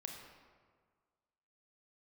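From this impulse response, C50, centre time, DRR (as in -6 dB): 3.5 dB, 55 ms, 1.5 dB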